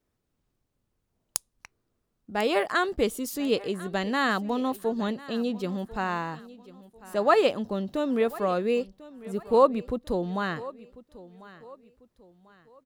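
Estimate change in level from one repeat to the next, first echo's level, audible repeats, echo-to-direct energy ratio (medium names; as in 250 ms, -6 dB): -9.0 dB, -19.0 dB, 2, -18.5 dB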